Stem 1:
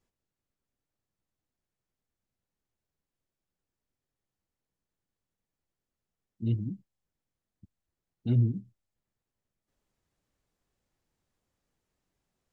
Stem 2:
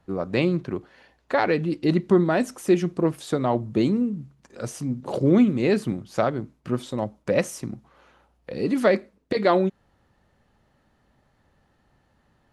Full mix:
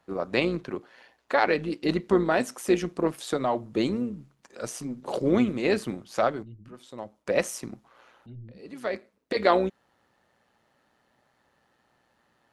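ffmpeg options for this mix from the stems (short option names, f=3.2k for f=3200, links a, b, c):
-filter_complex "[0:a]acompressor=threshold=-26dB:ratio=2,volume=-13.5dB,asplit=2[a][b];[1:a]highpass=f=480:p=1,volume=3dB[c];[b]apad=whole_len=552571[d];[c][d]sidechaincompress=threshold=-57dB:ratio=20:attack=31:release=669[e];[a][e]amix=inputs=2:normalize=0,tremolo=f=120:d=0.462"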